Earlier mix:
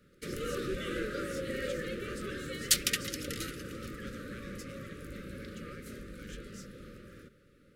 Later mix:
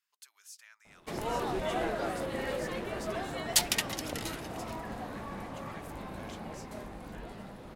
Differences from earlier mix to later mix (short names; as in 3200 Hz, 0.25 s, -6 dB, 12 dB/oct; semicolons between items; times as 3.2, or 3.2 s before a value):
background: entry +0.85 s; master: remove Chebyshev band-stop 570–1200 Hz, order 5